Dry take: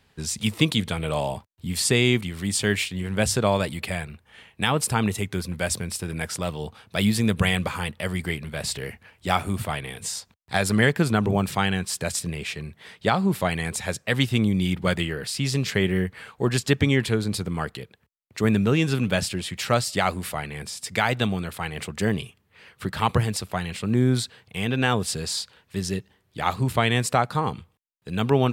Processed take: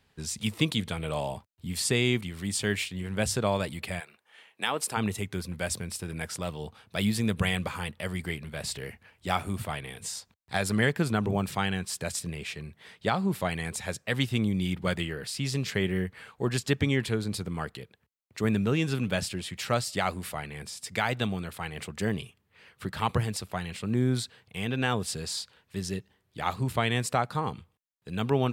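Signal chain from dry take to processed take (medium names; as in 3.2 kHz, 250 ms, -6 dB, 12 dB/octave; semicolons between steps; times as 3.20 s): 3.99–4.96 s: high-pass 580 Hz -> 280 Hz 12 dB/octave; trim -5.5 dB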